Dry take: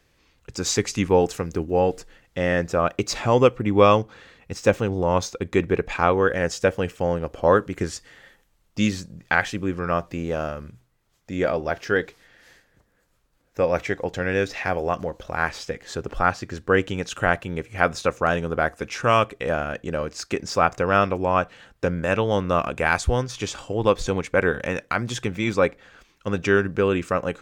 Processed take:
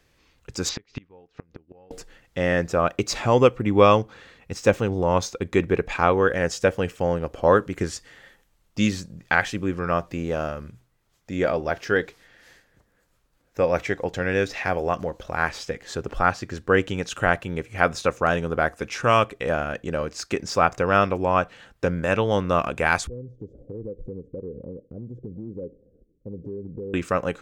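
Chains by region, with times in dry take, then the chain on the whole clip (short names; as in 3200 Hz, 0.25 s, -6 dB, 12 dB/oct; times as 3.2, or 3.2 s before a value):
0.69–1.91 LPF 4300 Hz 24 dB/oct + flipped gate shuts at -18 dBFS, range -33 dB
23.07–26.94 elliptic low-pass 500 Hz, stop band 50 dB + compressor 4:1, threshold -33 dBFS
whole clip: dry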